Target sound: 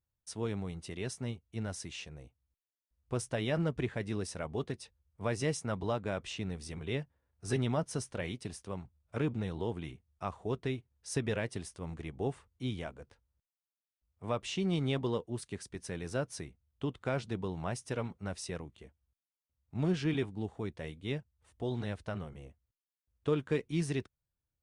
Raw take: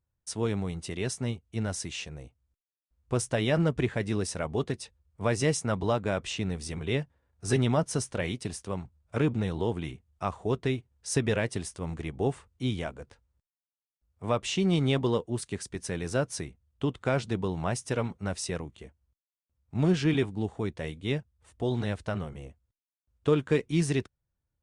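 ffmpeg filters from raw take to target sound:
-af "equalizer=f=7400:w=2.2:g=-3,volume=0.473"

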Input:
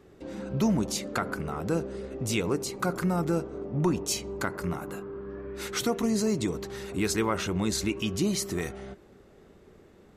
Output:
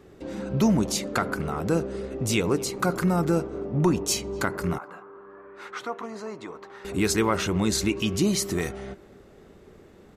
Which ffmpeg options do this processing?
-filter_complex "[0:a]asettb=1/sr,asplit=3[s0][s1][s2];[s0]atrim=end=4.784[s3];[s1]atrim=start=4.78:end=6.85,asetpts=PTS-STARTPTS,afade=t=in:d=0.004:c=qsin,afade=t=out:st=2.066:d=0.004:c=qsin,bandpass=f=1100:t=q:w=1.6:csg=0[s4];[s2]atrim=start=6.846[s5];[s3][s4]acrossfade=d=0.004:c1=hsin:c2=qsin[s6];[s6][s5]acrossfade=d=0.004:c1=qsin:c2=hsin,asplit=2[s7][s8];[s8]adelay=250,highpass=300,lowpass=3400,asoftclip=type=hard:threshold=0.0596,volume=0.0891[s9];[s7][s9]amix=inputs=2:normalize=0,volume=1.58"

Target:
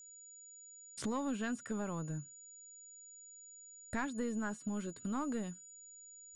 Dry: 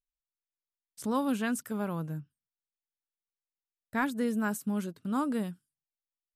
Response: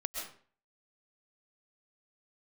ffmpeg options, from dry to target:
-filter_complex "[0:a]acrossover=split=4500[s0][s1];[s1]acompressor=threshold=0.00158:ratio=4:attack=1:release=60[s2];[s0][s2]amix=inputs=2:normalize=0,aresample=22050,aresample=44100,acompressor=threshold=0.00398:ratio=3,asoftclip=type=tanh:threshold=0.0158,aeval=exprs='val(0)+0.000708*sin(2*PI*6900*n/s)':c=same,asubboost=boost=6.5:cutoff=50,volume=3.16"

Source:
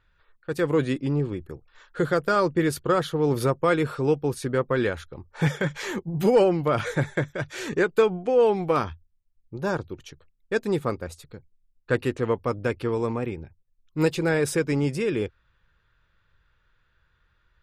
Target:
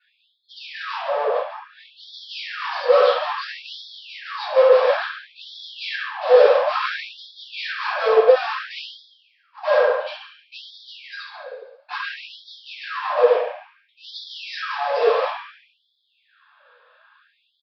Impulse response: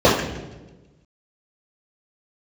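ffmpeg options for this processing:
-filter_complex "[0:a]bandreject=f=1900:w=11,aecho=1:1:70|140|210|280:0.355|0.142|0.0568|0.0227,aresample=11025,asoftclip=type=hard:threshold=0.02,aresample=44100[s0];[1:a]atrim=start_sample=2205[s1];[s0][s1]afir=irnorm=-1:irlink=0,afftfilt=real='re*gte(b*sr/1024,430*pow(3300/430,0.5+0.5*sin(2*PI*0.58*pts/sr)))':imag='im*gte(b*sr/1024,430*pow(3300/430,0.5+0.5*sin(2*PI*0.58*pts/sr)))':win_size=1024:overlap=0.75,volume=0.447"

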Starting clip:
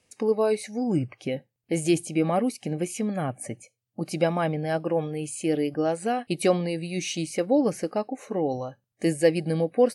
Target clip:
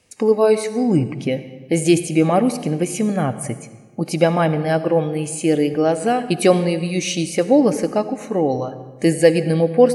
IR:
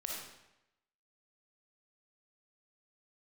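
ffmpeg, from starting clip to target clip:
-filter_complex "[0:a]asplit=2[s0][s1];[1:a]atrim=start_sample=2205,asetrate=30429,aresample=44100,lowshelf=f=140:g=11[s2];[s1][s2]afir=irnorm=-1:irlink=0,volume=0.237[s3];[s0][s3]amix=inputs=2:normalize=0,volume=2"

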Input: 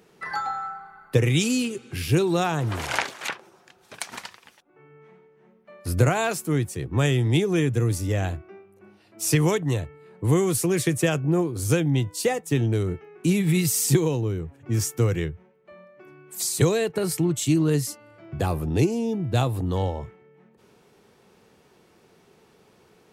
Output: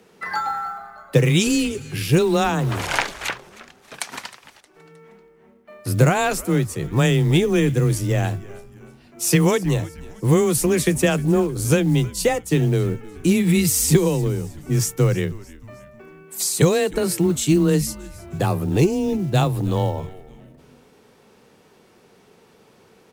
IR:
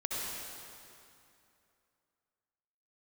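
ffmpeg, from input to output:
-filter_complex "[0:a]afreqshift=17,asplit=4[s0][s1][s2][s3];[s1]adelay=312,afreqshift=-120,volume=0.106[s4];[s2]adelay=624,afreqshift=-240,volume=0.0468[s5];[s3]adelay=936,afreqshift=-360,volume=0.0204[s6];[s0][s4][s5][s6]amix=inputs=4:normalize=0,acrusher=bits=8:mode=log:mix=0:aa=0.000001,volume=1.58"

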